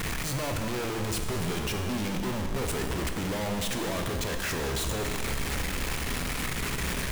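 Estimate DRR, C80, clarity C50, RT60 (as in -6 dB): 3.5 dB, 6.0 dB, 5.0 dB, 2.5 s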